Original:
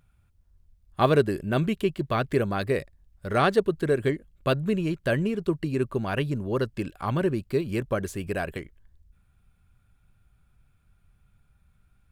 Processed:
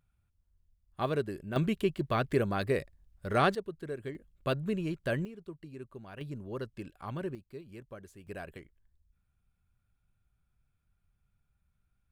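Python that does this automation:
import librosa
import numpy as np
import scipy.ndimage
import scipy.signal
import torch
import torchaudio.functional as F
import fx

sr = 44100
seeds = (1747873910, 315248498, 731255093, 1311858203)

y = fx.gain(x, sr, db=fx.steps((0.0, -11.0), (1.56, -4.0), (3.55, -15.0), (4.15, -7.0), (5.25, -19.0), (6.21, -12.0), (7.35, -20.0), (8.27, -13.0)))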